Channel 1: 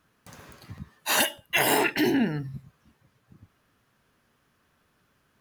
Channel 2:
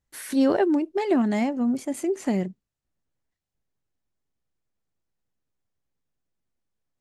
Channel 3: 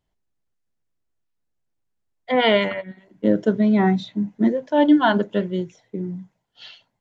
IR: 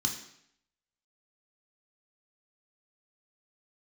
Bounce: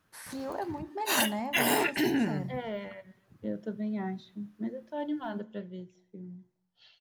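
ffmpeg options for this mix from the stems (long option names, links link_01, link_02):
-filter_complex "[0:a]volume=-4dB[link_01];[1:a]alimiter=limit=-21.5dB:level=0:latency=1:release=249,equalizer=frequency=980:width_type=o:width=0.77:gain=14.5,volume=-8.5dB,asplit=2[link_02][link_03];[link_03]volume=-14dB[link_04];[2:a]deesser=0.9,adelay=200,volume=-17dB,asplit=2[link_05][link_06];[link_06]volume=-19.5dB[link_07];[3:a]atrim=start_sample=2205[link_08];[link_04][link_07]amix=inputs=2:normalize=0[link_09];[link_09][link_08]afir=irnorm=-1:irlink=0[link_10];[link_01][link_02][link_05][link_10]amix=inputs=4:normalize=0"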